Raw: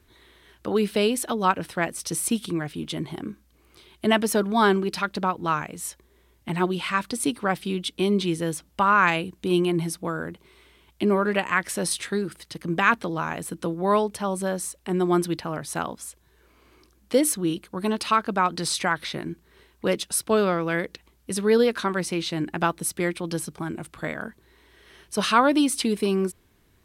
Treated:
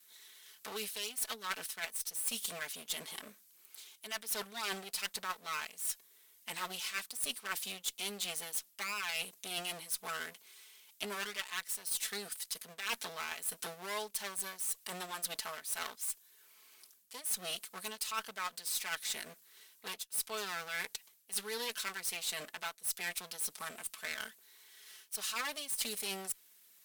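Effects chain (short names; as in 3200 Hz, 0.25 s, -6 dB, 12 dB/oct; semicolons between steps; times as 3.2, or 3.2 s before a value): minimum comb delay 4.6 ms; differentiator; reverse; compressor 10:1, threshold -41 dBFS, peak gain reduction 20.5 dB; reverse; added harmonics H 2 -24 dB, 6 -28 dB, 8 -36 dB, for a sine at -25.5 dBFS; gain +7 dB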